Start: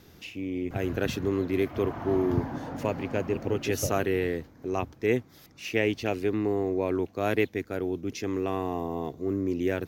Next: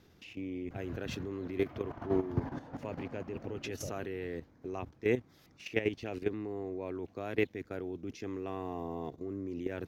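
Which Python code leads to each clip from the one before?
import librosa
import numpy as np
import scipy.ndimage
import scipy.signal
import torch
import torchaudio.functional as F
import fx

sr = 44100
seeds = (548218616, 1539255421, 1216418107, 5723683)

y = fx.high_shelf(x, sr, hz=8900.0, db=-11.0)
y = fx.level_steps(y, sr, step_db=12)
y = F.gain(torch.from_numpy(y), -2.5).numpy()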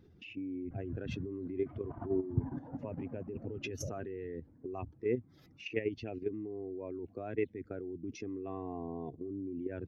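y = fx.spec_expand(x, sr, power=1.7)
y = fx.dynamic_eq(y, sr, hz=490.0, q=0.83, threshold_db=-43.0, ratio=4.0, max_db=-5)
y = F.gain(torch.from_numpy(y), 1.5).numpy()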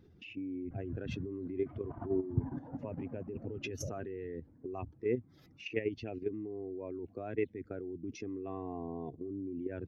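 y = x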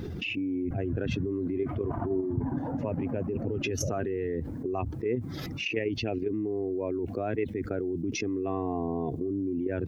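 y = fx.env_flatten(x, sr, amount_pct=70)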